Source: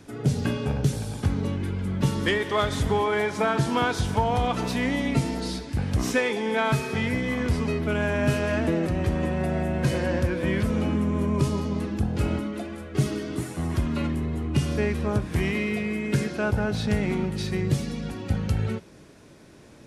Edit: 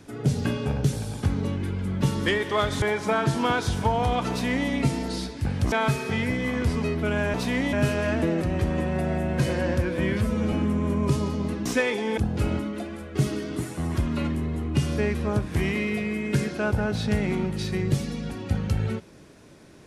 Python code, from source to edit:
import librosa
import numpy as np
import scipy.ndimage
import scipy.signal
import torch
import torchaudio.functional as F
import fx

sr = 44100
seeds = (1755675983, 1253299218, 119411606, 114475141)

y = fx.edit(x, sr, fx.cut(start_s=2.82, length_s=0.32),
    fx.duplicate(start_s=4.62, length_s=0.39, to_s=8.18),
    fx.move(start_s=6.04, length_s=0.52, to_s=11.97),
    fx.stretch_span(start_s=10.57, length_s=0.27, factor=1.5), tone=tone)